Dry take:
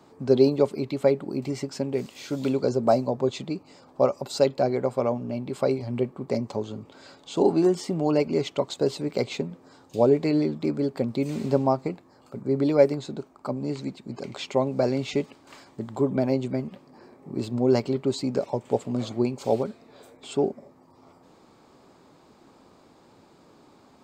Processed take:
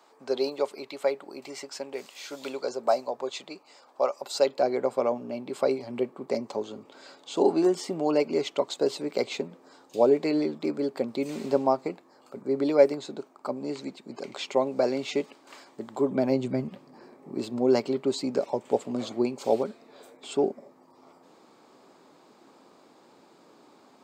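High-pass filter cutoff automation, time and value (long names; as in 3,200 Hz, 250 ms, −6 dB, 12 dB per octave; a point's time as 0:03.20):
0:04.12 640 Hz
0:04.78 300 Hz
0:15.96 300 Hz
0:16.68 89 Hz
0:17.32 240 Hz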